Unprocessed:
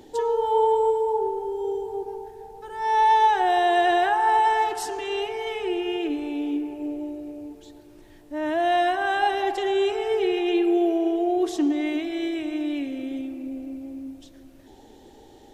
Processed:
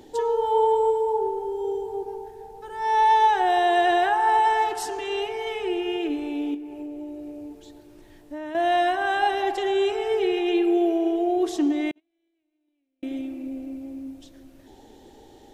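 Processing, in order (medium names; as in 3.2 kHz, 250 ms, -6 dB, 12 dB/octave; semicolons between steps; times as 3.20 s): 6.54–8.55 s: compression 10:1, threshold -32 dBFS, peak gain reduction 9 dB; 11.91–13.03 s: gate -20 dBFS, range -48 dB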